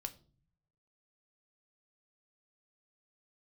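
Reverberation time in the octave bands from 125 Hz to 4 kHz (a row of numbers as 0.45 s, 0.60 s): 1.1 s, 0.90 s, 0.50 s, 0.35 s, 0.30 s, 0.35 s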